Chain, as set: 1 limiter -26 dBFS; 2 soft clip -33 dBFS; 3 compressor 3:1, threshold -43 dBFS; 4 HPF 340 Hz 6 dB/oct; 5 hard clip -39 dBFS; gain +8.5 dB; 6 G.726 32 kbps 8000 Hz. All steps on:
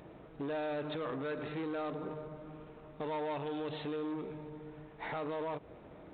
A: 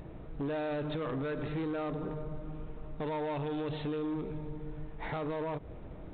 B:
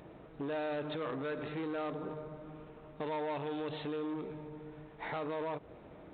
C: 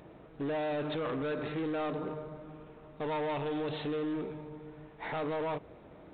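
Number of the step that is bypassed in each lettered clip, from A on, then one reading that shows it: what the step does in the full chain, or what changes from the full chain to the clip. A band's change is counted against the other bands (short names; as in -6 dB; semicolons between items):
4, 125 Hz band +7.5 dB; 5, distortion -24 dB; 3, loudness change +4.0 LU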